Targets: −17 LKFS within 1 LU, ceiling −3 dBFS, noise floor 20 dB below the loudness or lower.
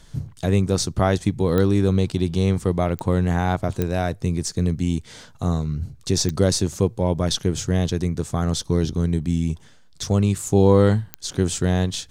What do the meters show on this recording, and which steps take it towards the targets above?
number of clicks 5; integrated loudness −22.0 LKFS; sample peak −3.5 dBFS; target loudness −17.0 LKFS
→ click removal
level +5 dB
brickwall limiter −3 dBFS

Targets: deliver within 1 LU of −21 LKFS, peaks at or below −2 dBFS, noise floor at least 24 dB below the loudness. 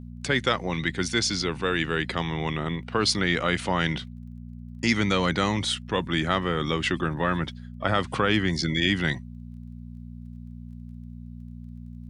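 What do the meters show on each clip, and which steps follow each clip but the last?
crackle rate 18 per second; mains hum 60 Hz; hum harmonics up to 240 Hz; level of the hum −37 dBFS; integrated loudness −25.5 LKFS; sample peak −7.5 dBFS; target loudness −21.0 LKFS
→ click removal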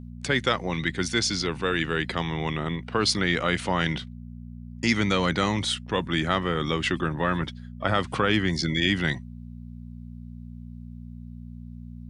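crackle rate 0 per second; mains hum 60 Hz; hum harmonics up to 240 Hz; level of the hum −37 dBFS
→ hum removal 60 Hz, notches 4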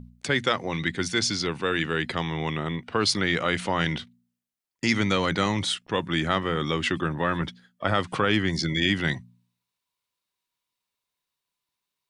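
mains hum none found; integrated loudness −26.0 LKFS; sample peak −8.0 dBFS; target loudness −21.0 LKFS
→ level +5 dB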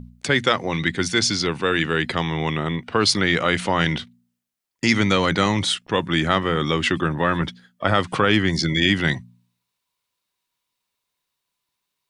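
integrated loudness −21.0 LKFS; sample peak −3.0 dBFS; background noise floor −80 dBFS

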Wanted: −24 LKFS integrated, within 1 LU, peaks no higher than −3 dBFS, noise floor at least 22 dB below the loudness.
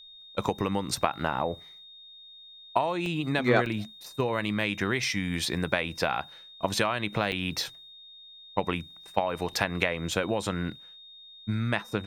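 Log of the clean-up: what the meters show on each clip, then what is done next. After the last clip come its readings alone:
number of dropouts 5; longest dropout 1.3 ms; interfering tone 3,700 Hz; level of the tone −47 dBFS; integrated loudness −29.5 LKFS; sample peak −5.5 dBFS; target loudness −24.0 LKFS
→ repair the gap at 0:00.93/0:03.06/0:03.66/0:07.32/0:10.12, 1.3 ms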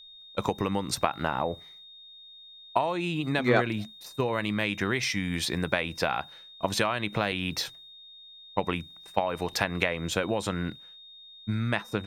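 number of dropouts 0; interfering tone 3,700 Hz; level of the tone −47 dBFS
→ notch filter 3,700 Hz, Q 30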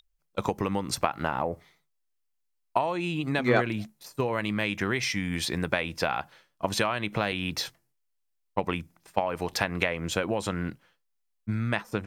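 interfering tone none found; integrated loudness −29.5 LKFS; sample peak −6.0 dBFS; target loudness −24.0 LKFS
→ level +5.5 dB
brickwall limiter −3 dBFS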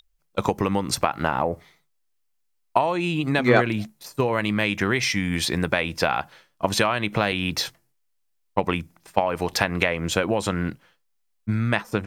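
integrated loudness −24.0 LKFS; sample peak −3.0 dBFS; background noise floor −70 dBFS

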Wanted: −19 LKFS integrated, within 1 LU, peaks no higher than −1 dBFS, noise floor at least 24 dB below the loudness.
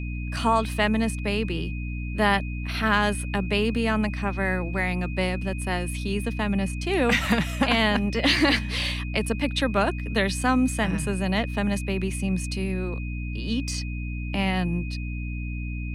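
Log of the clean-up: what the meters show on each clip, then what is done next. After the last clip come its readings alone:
mains hum 60 Hz; hum harmonics up to 300 Hz; level of the hum −28 dBFS; interfering tone 2,500 Hz; level of the tone −40 dBFS; integrated loudness −25.5 LKFS; sample peak −9.0 dBFS; target loudness −19.0 LKFS
→ hum removal 60 Hz, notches 5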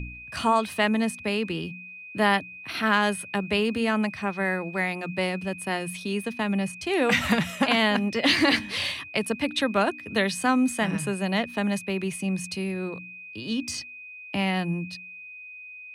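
mains hum none found; interfering tone 2,500 Hz; level of the tone −40 dBFS
→ notch filter 2,500 Hz, Q 30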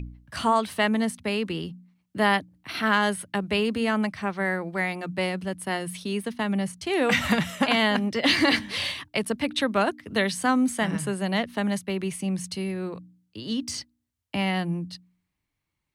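interfering tone none found; integrated loudness −26.0 LKFS; sample peak −9.5 dBFS; target loudness −19.0 LKFS
→ level +7 dB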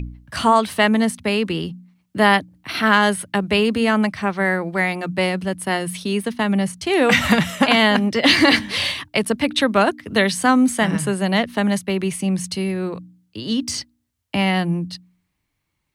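integrated loudness −19.0 LKFS; sample peak −2.5 dBFS; background noise floor −74 dBFS

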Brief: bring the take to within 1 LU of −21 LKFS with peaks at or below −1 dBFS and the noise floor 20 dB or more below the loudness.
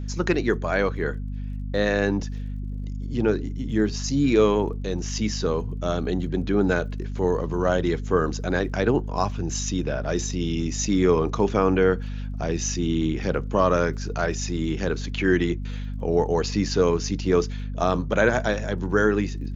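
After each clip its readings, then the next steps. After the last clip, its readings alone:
crackle rate 26 per second; mains hum 50 Hz; hum harmonics up to 250 Hz; level of the hum −28 dBFS; integrated loudness −24.5 LKFS; sample peak −6.5 dBFS; target loudness −21.0 LKFS
→ click removal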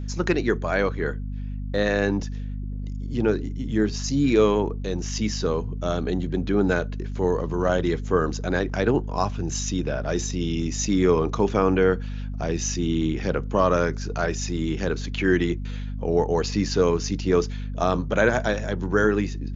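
crackle rate 0.051 per second; mains hum 50 Hz; hum harmonics up to 250 Hz; level of the hum −28 dBFS
→ mains-hum notches 50/100/150/200/250 Hz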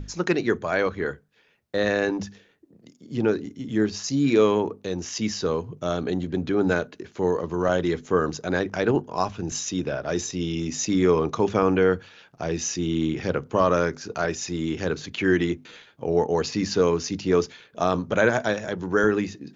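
mains hum none found; integrated loudness −25.0 LKFS; sample peak −6.5 dBFS; target loudness −21.0 LKFS
→ level +4 dB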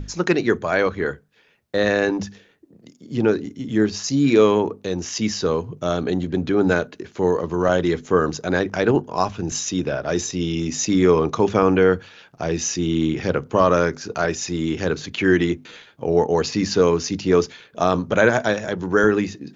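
integrated loudness −21.0 LKFS; sample peak −2.5 dBFS; background noise floor −55 dBFS

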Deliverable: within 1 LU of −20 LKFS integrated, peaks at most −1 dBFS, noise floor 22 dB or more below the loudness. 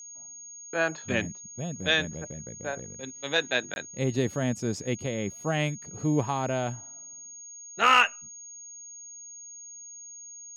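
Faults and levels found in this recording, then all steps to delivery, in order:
number of dropouts 1; longest dropout 21 ms; interfering tone 6,600 Hz; level of the tone −42 dBFS; integrated loudness −28.0 LKFS; sample peak −9.5 dBFS; target loudness −20.0 LKFS
→ repair the gap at 0:03.74, 21 ms
notch filter 6,600 Hz, Q 30
level +8 dB

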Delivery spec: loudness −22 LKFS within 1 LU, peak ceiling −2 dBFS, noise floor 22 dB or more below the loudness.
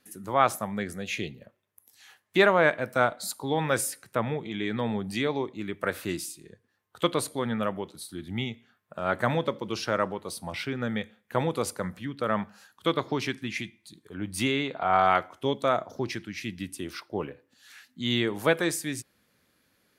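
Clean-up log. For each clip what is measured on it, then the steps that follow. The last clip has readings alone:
integrated loudness −29.0 LKFS; sample peak −7.5 dBFS; target loudness −22.0 LKFS
→ level +7 dB
brickwall limiter −2 dBFS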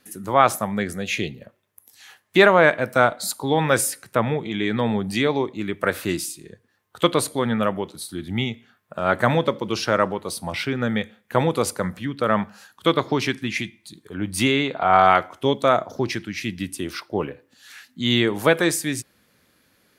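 integrated loudness −22.0 LKFS; sample peak −2.0 dBFS; background noise floor −66 dBFS

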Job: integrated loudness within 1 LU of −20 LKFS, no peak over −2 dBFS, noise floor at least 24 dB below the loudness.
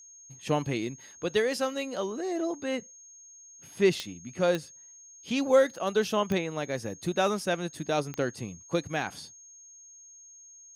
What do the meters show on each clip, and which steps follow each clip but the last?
number of clicks 4; interfering tone 6,500 Hz; level of the tone −49 dBFS; integrated loudness −29.5 LKFS; sample peak −11.5 dBFS; target loudness −20.0 LKFS
→ click removal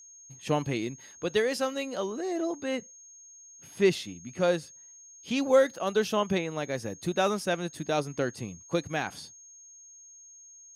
number of clicks 0; interfering tone 6,500 Hz; level of the tone −49 dBFS
→ notch filter 6,500 Hz, Q 30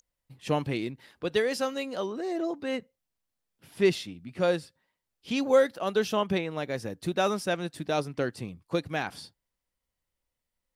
interfering tone none found; integrated loudness −29.5 LKFS; sample peak −12.0 dBFS; target loudness −20.0 LKFS
→ level +9.5 dB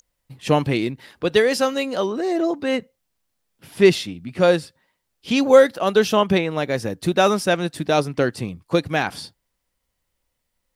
integrated loudness −20.0 LKFS; sample peak −2.5 dBFS; background noise floor −76 dBFS

